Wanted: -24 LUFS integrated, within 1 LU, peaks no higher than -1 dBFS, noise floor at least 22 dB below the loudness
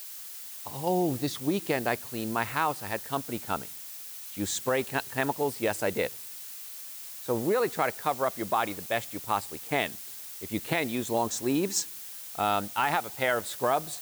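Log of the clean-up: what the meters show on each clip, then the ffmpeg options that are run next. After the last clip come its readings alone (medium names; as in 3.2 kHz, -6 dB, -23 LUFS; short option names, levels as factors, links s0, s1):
noise floor -42 dBFS; noise floor target -52 dBFS; loudness -30.0 LUFS; peak level -12.5 dBFS; loudness target -24.0 LUFS
-> -af "afftdn=nr=10:nf=-42"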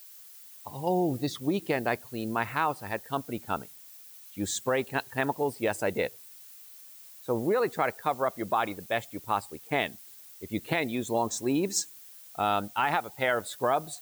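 noise floor -50 dBFS; noise floor target -52 dBFS
-> -af "afftdn=nr=6:nf=-50"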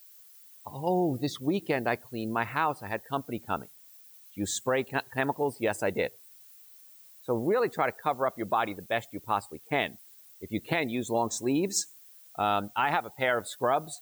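noise floor -54 dBFS; loudness -30.0 LUFS; peak level -13.0 dBFS; loudness target -24.0 LUFS
-> -af "volume=2"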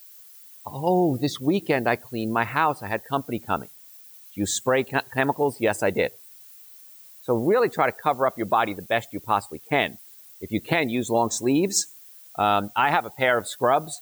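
loudness -24.0 LUFS; peak level -7.0 dBFS; noise floor -48 dBFS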